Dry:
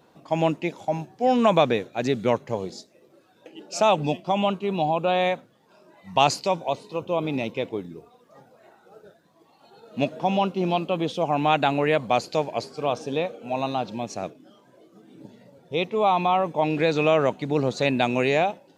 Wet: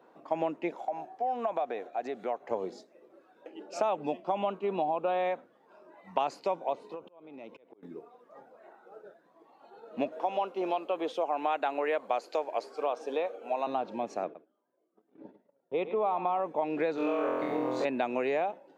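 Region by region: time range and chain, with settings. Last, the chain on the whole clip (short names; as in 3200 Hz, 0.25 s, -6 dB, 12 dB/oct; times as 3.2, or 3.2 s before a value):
0.75–2.51 HPF 370 Hz 6 dB/oct + bell 720 Hz +13.5 dB 0.25 oct + compressor 2:1, threshold -35 dBFS
6.94–7.83 compressor 8:1, threshold -36 dBFS + auto swell 0.385 s
10.12–13.67 HPF 370 Hz + high shelf 5000 Hz +6.5 dB
14.24–16.4 gate -48 dBFS, range -22 dB + air absorption 180 m + echo 0.107 s -14 dB
16.95–17.85 compressor, threshold -25 dBFS + requantised 10-bit, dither none + flutter echo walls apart 4 m, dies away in 1.2 s
whole clip: three-band isolator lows -24 dB, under 250 Hz, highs -15 dB, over 2100 Hz; compressor 4:1, threshold -27 dBFS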